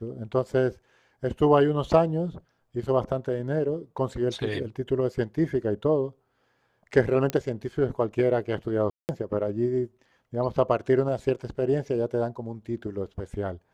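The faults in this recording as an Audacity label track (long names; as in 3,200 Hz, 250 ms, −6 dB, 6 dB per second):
7.300000	7.300000	click −12 dBFS
8.900000	9.090000	drop-out 189 ms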